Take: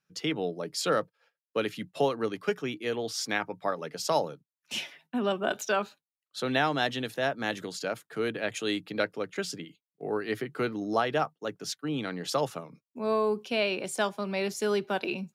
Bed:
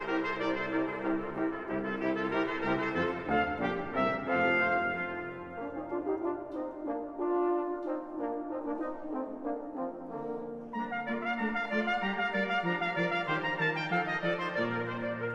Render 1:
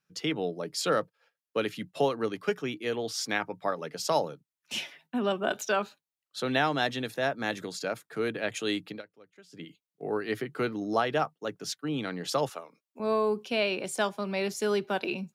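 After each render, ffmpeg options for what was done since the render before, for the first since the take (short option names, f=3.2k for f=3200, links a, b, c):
-filter_complex "[0:a]asettb=1/sr,asplit=3[a][b][c];[a]atrim=end=6.814[d];[b]atrim=start=6.81:end=8.38,asetpts=PTS-STARTPTS,afade=t=in:d=0.004:c=qsin,afade=t=out:st=1.566:d=0.004:c=qsin,bandreject=f=3k:w=12[e];[c]atrim=start=8.376[f];[d][e]acrossfade=d=0.004:c1=hsin:c2=qsin[g];[g][f]acrossfade=d=0.004:c1=qsin:c2=hsin,asettb=1/sr,asplit=3[h][i][j];[h]atrim=end=12.494[k];[i]atrim=start=12.49:end=13,asetpts=PTS-STARTPTS,afade=t=in:d=0.004:c=qsin,afade=t=out:st=0.506:d=0.004:c=qsin,highpass=460[l];[j]atrim=start=12.996[m];[k][l]acrossfade=d=0.004:c1=hsin:c2=qsin[n];[n][m]acrossfade=d=0.004:c1=qsin:c2=hsin,asplit=3[o][p][q];[o]atrim=end=9.02,asetpts=PTS-STARTPTS,afade=t=out:st=8.89:d=0.13:silence=0.0794328[r];[p]atrim=start=9.02:end=9.51,asetpts=PTS-STARTPTS,volume=-22dB[s];[q]atrim=start=9.51,asetpts=PTS-STARTPTS,afade=t=in:d=0.13:silence=0.0794328[t];[r][s][t]concat=n=3:v=0:a=1"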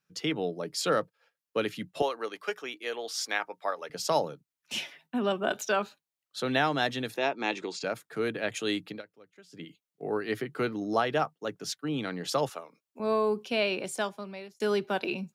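-filter_complex "[0:a]asettb=1/sr,asplit=3[a][b][c];[a]atrim=end=2.024[d];[b]atrim=start=2.02:end=3.9,asetpts=PTS-STARTPTS,afade=t=in:d=0.004:c=qsin,afade=t=out:st=1.876:d=0.004:c=qsin,highpass=530[e];[c]atrim=start=3.896[f];[d][e]acrossfade=d=0.004:c1=hsin:c2=qsin[g];[g][f]acrossfade=d=0.004:c1=qsin:c2=hsin,asettb=1/sr,asplit=3[h][i][j];[h]atrim=end=7.174[k];[i]atrim=start=7.17:end=7.84,asetpts=PTS-STARTPTS,afade=t=in:d=0.004:c=qsin,afade=t=out:st=0.666:d=0.004:c=qsin,highpass=250,equalizer=f=360:t=q:w=4:g=8,equalizer=f=580:t=q:w=4:g=-4,equalizer=f=900:t=q:w=4:g=7,equalizer=f=1.6k:t=q:w=4:g=-5,equalizer=f=2.5k:t=q:w=4:g=9,lowpass=f=7.4k:w=0.5412,lowpass=f=7.4k:w=1.3066[l];[j]atrim=start=7.836[m];[k][l]acrossfade=d=0.004:c1=hsin:c2=qsin[n];[n][m]acrossfade=d=0.004:c1=qsin:c2=hsin,asplit=2[o][p];[o]atrim=end=14.6,asetpts=PTS-STARTPTS,afade=t=out:st=13.79:d=0.81[q];[p]atrim=start=14.6,asetpts=PTS-STARTPTS,afade=t=in:d=0.004:c=hsin[r];[q][r]concat=n=2:v=0:a=1"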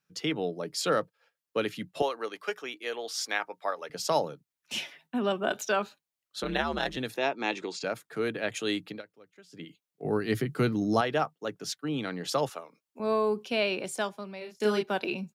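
-filter_complex "[0:a]asettb=1/sr,asplit=3[a][b][c];[a]atrim=end=6.434[d];[b]atrim=start=6.43:end=6.97,asetpts=PTS-STARTPTS,afade=t=in:d=0.004:c=qsin,afade=t=out:st=0.536:d=0.004:c=qsin,aeval=exprs='val(0)*sin(2*PI*80*n/s)':c=same[e];[c]atrim=start=6.966[f];[d][e]acrossfade=d=0.004:c1=hsin:c2=qsin[g];[g][f]acrossfade=d=0.004:c1=qsin:c2=hsin,asettb=1/sr,asplit=3[h][i][j];[h]atrim=end=10.054[k];[i]atrim=start=10.05:end=11.01,asetpts=PTS-STARTPTS,afade=t=in:d=0.004:c=qsin,afade=t=out:st=0.956:d=0.004:c=qsin,bass=f=250:g=12,treble=f=4k:g=7[l];[j]atrim=start=11.006[m];[k][l]acrossfade=d=0.004:c1=hsin:c2=qsin[n];[n][m]acrossfade=d=0.004:c1=qsin:c2=hsin,asplit=3[o][p][q];[o]afade=t=out:st=14.4:d=0.02[r];[p]asplit=2[s][t];[t]adelay=33,volume=-3dB[u];[s][u]amix=inputs=2:normalize=0,afade=t=in:st=14.4:d=0.02,afade=t=out:st=14.82:d=0.02[v];[q]afade=t=in:st=14.82:d=0.02[w];[r][v][w]amix=inputs=3:normalize=0"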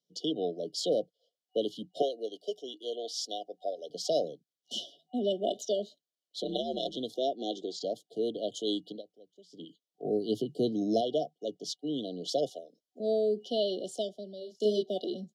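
-filter_complex "[0:a]afftfilt=real='re*(1-between(b*sr/4096,750,2900))':imag='im*(1-between(b*sr/4096,750,2900))':win_size=4096:overlap=0.75,acrossover=split=190 6700:gain=0.0891 1 0.178[a][b][c];[a][b][c]amix=inputs=3:normalize=0"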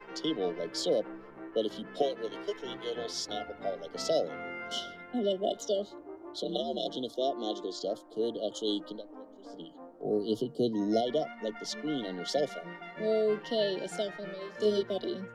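-filter_complex "[1:a]volume=-13dB[a];[0:a][a]amix=inputs=2:normalize=0"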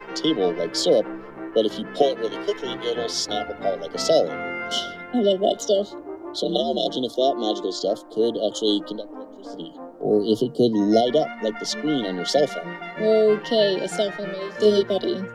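-af "volume=10.5dB"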